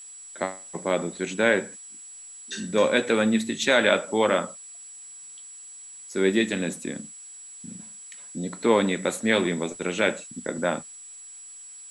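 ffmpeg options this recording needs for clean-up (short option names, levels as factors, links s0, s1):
-af "bandreject=f=7800:w=30,afftdn=nr=25:nf=-44"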